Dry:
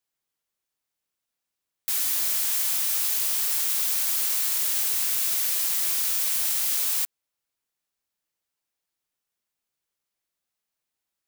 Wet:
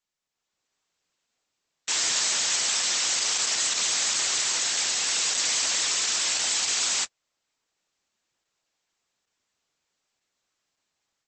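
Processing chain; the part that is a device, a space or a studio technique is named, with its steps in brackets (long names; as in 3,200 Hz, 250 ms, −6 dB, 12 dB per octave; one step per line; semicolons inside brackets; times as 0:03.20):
video call (high-pass filter 120 Hz 6 dB per octave; automatic gain control gain up to 10 dB; Opus 12 kbit/s 48,000 Hz)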